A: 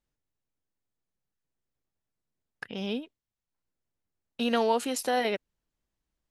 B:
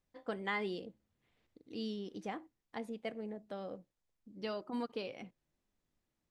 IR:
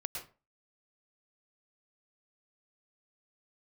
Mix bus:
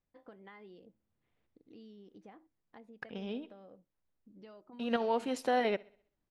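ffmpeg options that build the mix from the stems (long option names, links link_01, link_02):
-filter_complex "[0:a]adelay=400,volume=-2.5dB,asplit=2[link_01][link_02];[link_02]volume=-23dB[link_03];[1:a]acompressor=threshold=-51dB:ratio=3,volume=-4dB,asplit=2[link_04][link_05];[link_05]apad=whole_len=295857[link_06];[link_01][link_06]sidechaincompress=threshold=-58dB:ratio=4:attack=10:release=166[link_07];[link_03]aecho=0:1:65|130|195|260|325|390:1|0.45|0.202|0.0911|0.041|0.0185[link_08];[link_07][link_04][link_08]amix=inputs=3:normalize=0,aemphasis=mode=reproduction:type=75fm"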